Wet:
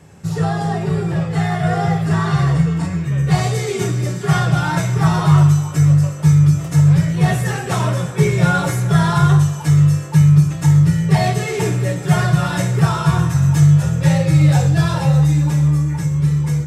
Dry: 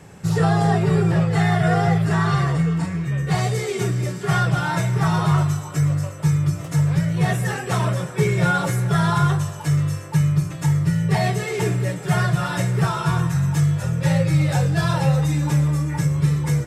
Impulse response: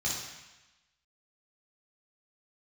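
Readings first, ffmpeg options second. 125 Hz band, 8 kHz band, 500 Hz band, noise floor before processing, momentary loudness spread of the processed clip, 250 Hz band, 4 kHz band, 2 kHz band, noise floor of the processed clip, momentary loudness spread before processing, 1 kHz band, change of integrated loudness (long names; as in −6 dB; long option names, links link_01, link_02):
+5.5 dB, +4.0 dB, +2.0 dB, −33 dBFS, 8 LU, +5.0 dB, +3.0 dB, +1.5 dB, −26 dBFS, 4 LU, +2.0 dB, +5.0 dB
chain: -filter_complex "[0:a]dynaudnorm=framelen=310:gausssize=13:maxgain=8dB,asplit=2[link_01][link_02];[1:a]atrim=start_sample=2205,afade=type=out:start_time=0.18:duration=0.01,atrim=end_sample=8379[link_03];[link_02][link_03]afir=irnorm=-1:irlink=0,volume=-14dB[link_04];[link_01][link_04]amix=inputs=2:normalize=0,volume=-1.5dB"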